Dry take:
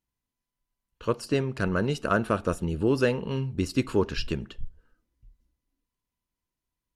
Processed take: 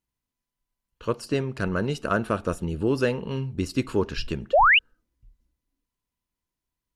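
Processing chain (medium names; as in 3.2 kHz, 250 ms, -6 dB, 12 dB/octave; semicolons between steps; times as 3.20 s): painted sound rise, 4.53–4.79 s, 500–3100 Hz -16 dBFS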